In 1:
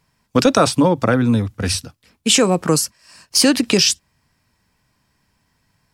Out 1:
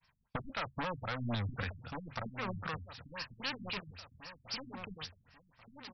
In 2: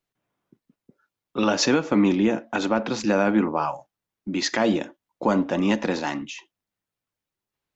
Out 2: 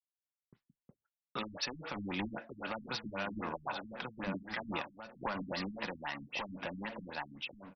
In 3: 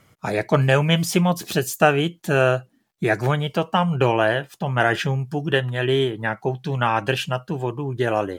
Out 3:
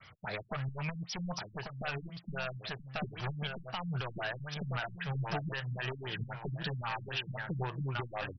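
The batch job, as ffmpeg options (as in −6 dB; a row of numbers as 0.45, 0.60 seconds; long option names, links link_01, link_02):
-filter_complex "[0:a]asoftclip=type=hard:threshold=-17dB,agate=range=-33dB:threshold=-57dB:ratio=3:detection=peak,equalizer=frequency=310:width=0.78:gain=-13.5,acompressor=threshold=-34dB:ratio=4,tiltshelf=frequency=970:gain=-3.5,asplit=2[link_01][link_02];[link_02]adelay=1139,lowpass=frequency=4300:poles=1,volume=-7dB,asplit=2[link_03][link_04];[link_04]adelay=1139,lowpass=frequency=4300:poles=1,volume=0.39,asplit=2[link_05][link_06];[link_06]adelay=1139,lowpass=frequency=4300:poles=1,volume=0.39,asplit=2[link_07][link_08];[link_08]adelay=1139,lowpass=frequency=4300:poles=1,volume=0.39,asplit=2[link_09][link_10];[link_10]adelay=1139,lowpass=frequency=4300:poles=1,volume=0.39[link_11];[link_03][link_05][link_07][link_09][link_11]amix=inputs=5:normalize=0[link_12];[link_01][link_12]amix=inputs=2:normalize=0,alimiter=level_in=5dB:limit=-24dB:level=0:latency=1:release=222,volume=-5dB,afftfilt=real='re*lt(b*sr/1024,250*pow(6000/250,0.5+0.5*sin(2*PI*3.8*pts/sr)))':imag='im*lt(b*sr/1024,250*pow(6000/250,0.5+0.5*sin(2*PI*3.8*pts/sr)))':win_size=1024:overlap=0.75,volume=5dB"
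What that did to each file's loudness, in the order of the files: −24.0, −17.0, −17.0 LU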